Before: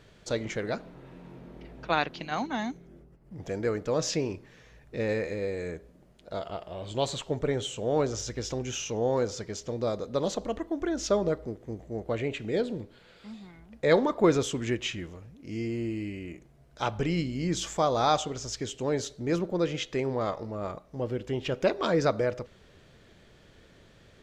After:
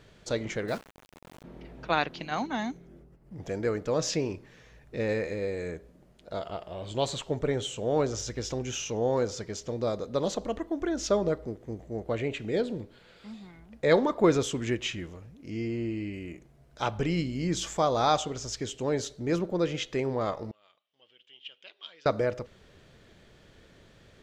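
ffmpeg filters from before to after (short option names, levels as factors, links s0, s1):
-filter_complex "[0:a]asettb=1/sr,asplit=3[s0][s1][s2];[s0]atrim=end=0.684[s3];[s1]atrim=start=0.68:end=1.44,asetpts=PTS-STARTPTS,afade=t=in:d=0.004:c=qsin,afade=t=out:st=0.756:d=0.004:c=qsin,aeval=exprs='val(0)*gte(abs(val(0)),0.00891)':c=same[s4];[s2]atrim=start=1.436[s5];[s3][s4]acrossfade=d=0.004:c1=hsin:c2=qsin[s6];[s6][s5]acrossfade=d=0.004:c1=qsin:c2=hsin,asettb=1/sr,asplit=3[s7][s8][s9];[s7]atrim=end=15.504[s10];[s8]atrim=start=15.5:end=16.13,asetpts=PTS-STARTPTS,afade=t=in:d=0.004:c=qsin,afade=t=out:st=0.626:d=0.004:c=qsin,lowpass=5700[s11];[s9]atrim=start=16.126[s12];[s10][s11]acrossfade=d=0.004:c1=hsin:c2=qsin[s13];[s13][s12]acrossfade=d=0.004:c1=qsin:c2=hsin,asettb=1/sr,asplit=3[s14][s15][s16];[s14]atrim=end=20.514[s17];[s15]atrim=start=20.51:end=22.06,asetpts=PTS-STARTPTS,afade=t=in:d=0.004:c=qsin,afade=t=out:st=1.546:d=0.004:c=qsin,bandpass=f=3100:t=q:w=8.4[s18];[s16]atrim=start=22.056[s19];[s17][s18]acrossfade=d=0.004:c1=hsin:c2=qsin[s20];[s20][s19]acrossfade=d=0.004:c1=qsin:c2=hsin"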